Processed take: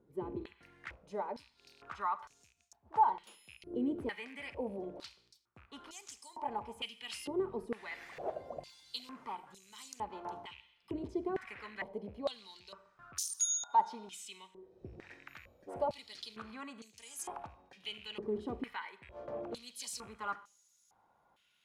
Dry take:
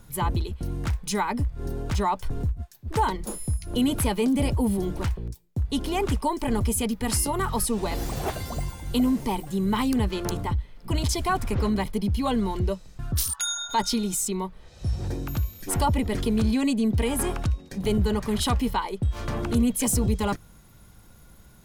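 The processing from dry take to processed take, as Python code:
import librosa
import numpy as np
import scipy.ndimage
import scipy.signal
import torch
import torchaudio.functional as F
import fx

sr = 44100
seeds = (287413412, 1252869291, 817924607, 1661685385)

y = fx.rattle_buzz(x, sr, strikes_db=-25.0, level_db=-34.0)
y = fx.rev_schroeder(y, sr, rt60_s=0.71, comb_ms=33, drr_db=14.0)
y = fx.filter_held_bandpass(y, sr, hz=2.2, low_hz=380.0, high_hz=6500.0)
y = F.gain(torch.from_numpy(y), -1.5).numpy()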